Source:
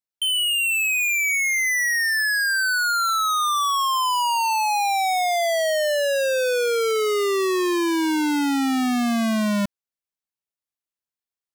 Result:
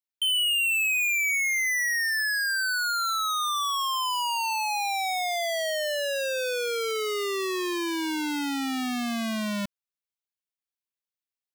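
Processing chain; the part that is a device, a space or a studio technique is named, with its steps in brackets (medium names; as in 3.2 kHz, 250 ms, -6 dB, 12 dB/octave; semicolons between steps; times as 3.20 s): presence and air boost (peaking EQ 3.2 kHz +6 dB 1.9 oct; treble shelf 12 kHz +7 dB); trim -8.5 dB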